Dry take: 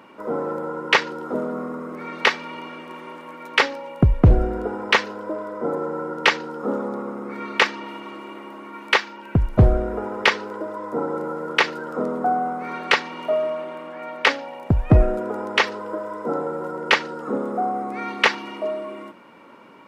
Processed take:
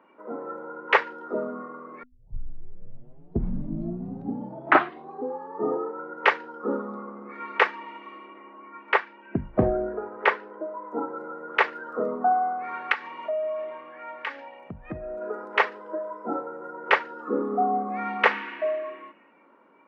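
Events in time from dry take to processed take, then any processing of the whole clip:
2.03 tape start 3.97 s
8.26–10.85 high shelf 4100 Hz -9.5 dB
12.92–15.22 compressor 3:1, threshold -26 dBFS
17.06–18.25 reverb throw, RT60 2.4 s, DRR 6 dB
whole clip: notches 50/100/150/200/250 Hz; spectral noise reduction 10 dB; three-band isolator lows -18 dB, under 190 Hz, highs -22 dB, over 2300 Hz

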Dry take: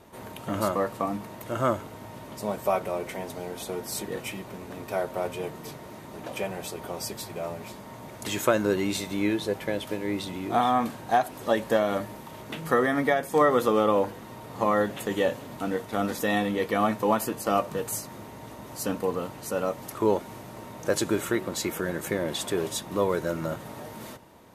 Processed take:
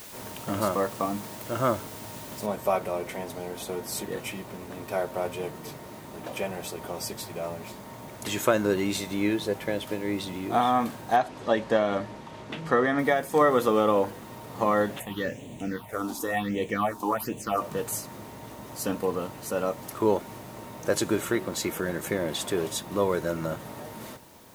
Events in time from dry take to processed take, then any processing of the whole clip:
2.46 noise floor step -45 dB -57 dB
11.16–12.99 LPF 5600 Hz
14.99–17.6 phaser stages 6, 0.53 Hz -> 1.8 Hz, lowest notch 130–1400 Hz

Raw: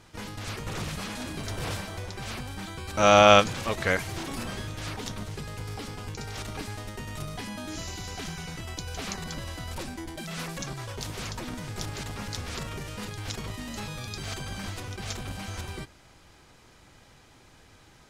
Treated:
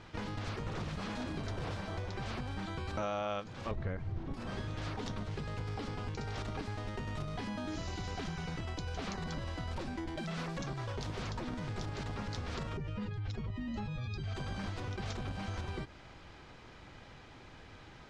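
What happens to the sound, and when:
3.71–4.34 RIAA curve playback
12.77–14.35 spectral contrast raised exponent 1.7
whole clip: LPF 3800 Hz 12 dB/oct; dynamic EQ 2500 Hz, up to -5 dB, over -48 dBFS, Q 0.97; compressor 6:1, threshold -38 dBFS; gain +2.5 dB

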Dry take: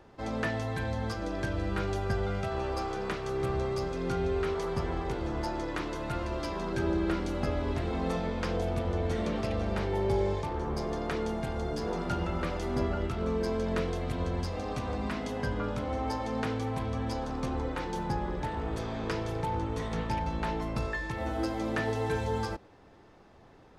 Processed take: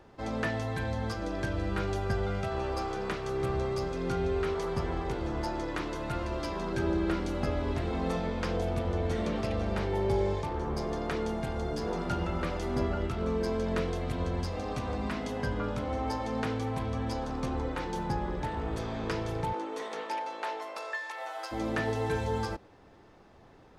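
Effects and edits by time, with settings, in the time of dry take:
19.52–21.51 HPF 280 Hz -> 720 Hz 24 dB/oct

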